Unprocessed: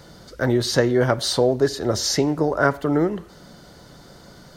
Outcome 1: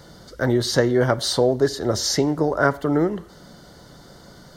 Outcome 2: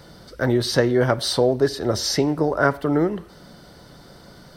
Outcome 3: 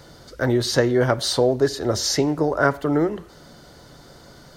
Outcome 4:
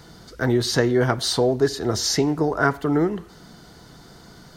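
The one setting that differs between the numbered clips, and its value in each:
notch, frequency: 2500, 6800, 190, 560 Hz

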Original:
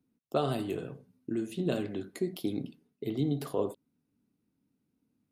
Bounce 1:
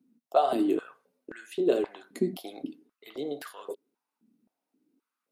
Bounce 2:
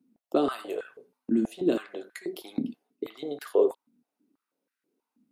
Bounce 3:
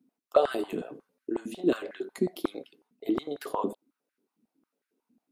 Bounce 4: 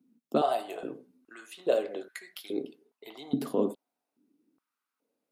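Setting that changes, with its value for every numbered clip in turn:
stepped high-pass, rate: 3.8, 6.2, 11, 2.4 Hz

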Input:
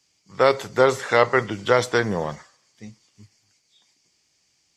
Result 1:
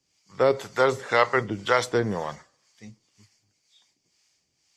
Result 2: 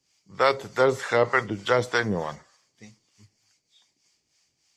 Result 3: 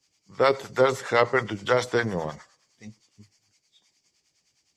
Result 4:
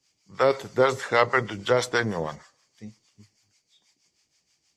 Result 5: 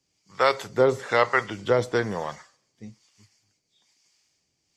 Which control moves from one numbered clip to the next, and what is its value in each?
harmonic tremolo, rate: 2, 3.3, 9.7, 6.3, 1.1 Hz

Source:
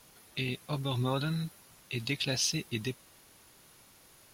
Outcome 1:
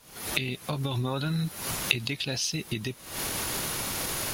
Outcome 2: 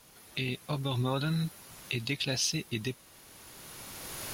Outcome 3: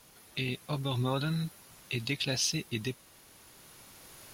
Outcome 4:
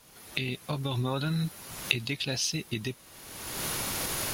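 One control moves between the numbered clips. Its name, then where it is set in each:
recorder AGC, rising by: 88, 14, 5.4, 35 dB/s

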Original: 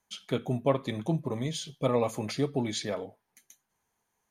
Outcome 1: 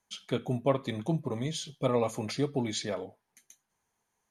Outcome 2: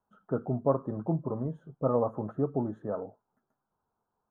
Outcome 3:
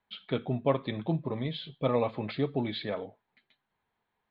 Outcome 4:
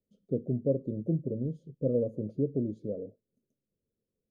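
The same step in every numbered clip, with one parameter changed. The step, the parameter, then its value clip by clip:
elliptic low-pass, frequency: 12000, 1400, 4000, 540 Hz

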